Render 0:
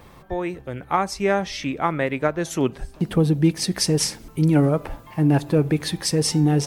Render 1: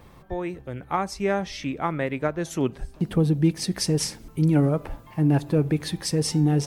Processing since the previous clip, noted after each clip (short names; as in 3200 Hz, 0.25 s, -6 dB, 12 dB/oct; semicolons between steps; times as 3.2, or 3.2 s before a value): low shelf 320 Hz +4 dB; gain -5 dB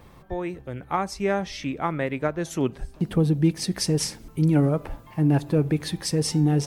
nothing audible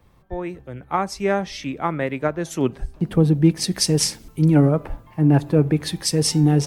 three-band expander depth 40%; gain +4 dB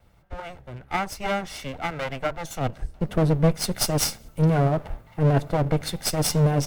minimum comb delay 1.4 ms; gain -1.5 dB